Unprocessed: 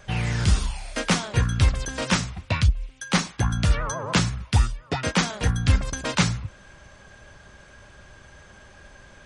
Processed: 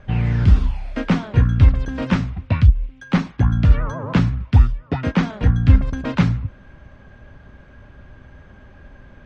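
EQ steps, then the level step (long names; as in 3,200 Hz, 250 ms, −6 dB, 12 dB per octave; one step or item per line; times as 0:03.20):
low-pass filter 2,600 Hz 12 dB per octave
parametric band 260 Hz +7.5 dB 0.24 octaves
low-shelf EQ 330 Hz +9.5 dB
−1.5 dB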